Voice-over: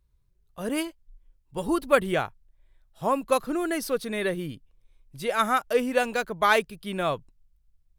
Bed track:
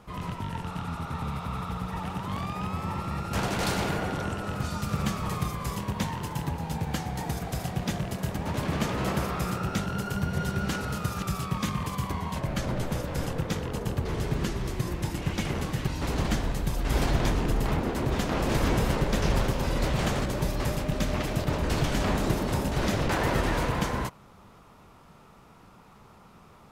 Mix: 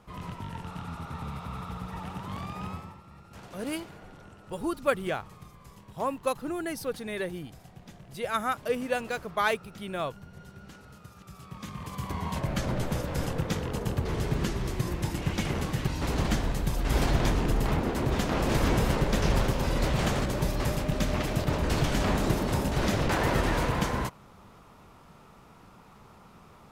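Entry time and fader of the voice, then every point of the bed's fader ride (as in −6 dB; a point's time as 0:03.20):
2.95 s, −5.5 dB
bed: 0:02.72 −4.5 dB
0:03.00 −19 dB
0:11.22 −19 dB
0:12.26 0 dB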